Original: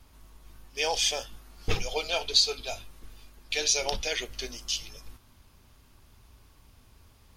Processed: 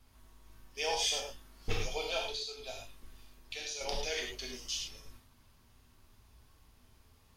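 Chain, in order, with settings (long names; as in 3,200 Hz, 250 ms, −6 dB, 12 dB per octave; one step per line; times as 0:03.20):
0:02.22–0:03.81: downward compressor 6 to 1, threshold −32 dBFS, peak gain reduction 14 dB
reverb whose tail is shaped and stops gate 130 ms flat, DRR −0.5 dB
level −8.5 dB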